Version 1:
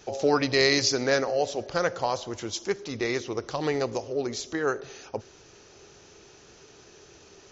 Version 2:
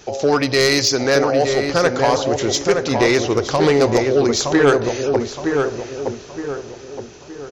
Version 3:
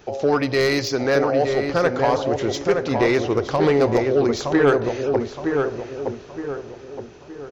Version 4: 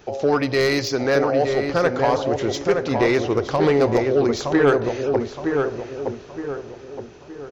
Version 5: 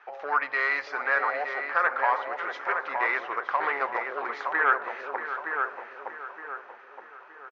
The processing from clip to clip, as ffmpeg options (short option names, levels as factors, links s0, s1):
-filter_complex "[0:a]dynaudnorm=f=330:g=11:m=2.11,aeval=exprs='0.376*sin(PI/2*1.58*val(0)/0.376)':c=same,asplit=2[s0][s1];[s1]adelay=918,lowpass=f=1700:p=1,volume=0.631,asplit=2[s2][s3];[s3]adelay=918,lowpass=f=1700:p=1,volume=0.43,asplit=2[s4][s5];[s5]adelay=918,lowpass=f=1700:p=1,volume=0.43,asplit=2[s6][s7];[s7]adelay=918,lowpass=f=1700:p=1,volume=0.43,asplit=2[s8][s9];[s9]adelay=918,lowpass=f=1700:p=1,volume=0.43[s10];[s0][s2][s4][s6][s8][s10]amix=inputs=6:normalize=0"
-af "equalizer=f=7500:t=o:w=1.8:g=-11.5,volume=0.75"
-af anull
-filter_complex "[0:a]asuperpass=centerf=1400:order=4:qfactor=1.3,asplit=2[s0][s1];[s1]aecho=0:1:634:0.266[s2];[s0][s2]amix=inputs=2:normalize=0,volume=1.41"